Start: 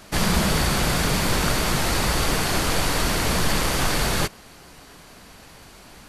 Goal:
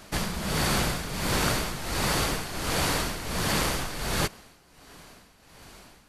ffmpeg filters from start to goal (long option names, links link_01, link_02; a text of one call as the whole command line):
ffmpeg -i in.wav -af "tremolo=f=1.4:d=0.72,afftfilt=real='re*lt(hypot(re,im),0.708)':imag='im*lt(hypot(re,im),0.708)':win_size=1024:overlap=0.75,volume=-2dB" out.wav